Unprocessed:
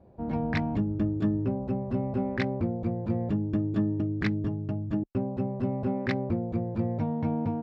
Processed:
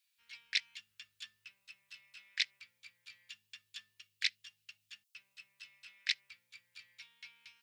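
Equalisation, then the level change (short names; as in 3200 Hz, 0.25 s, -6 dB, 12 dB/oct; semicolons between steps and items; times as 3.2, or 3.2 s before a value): inverse Chebyshev high-pass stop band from 780 Hz, stop band 60 dB; high shelf 3900 Hz +9 dB; +6.5 dB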